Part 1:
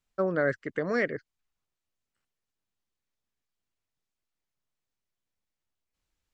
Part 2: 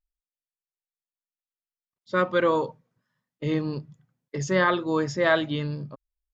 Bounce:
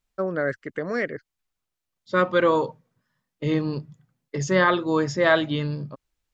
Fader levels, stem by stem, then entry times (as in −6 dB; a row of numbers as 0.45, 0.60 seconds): +1.0, +2.5 decibels; 0.00, 0.00 seconds